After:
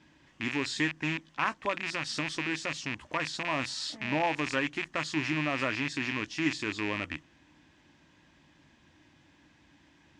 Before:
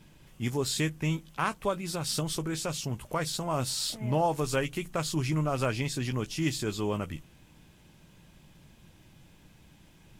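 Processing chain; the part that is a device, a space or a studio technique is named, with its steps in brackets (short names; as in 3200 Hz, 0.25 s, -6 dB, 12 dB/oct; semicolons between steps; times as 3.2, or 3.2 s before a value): car door speaker with a rattle (rattling part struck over -37 dBFS, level -21 dBFS; speaker cabinet 83–6600 Hz, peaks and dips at 120 Hz -9 dB, 180 Hz -9 dB, 290 Hz +8 dB, 440 Hz -6 dB, 1000 Hz +4 dB, 1800 Hz +9 dB); gain -3 dB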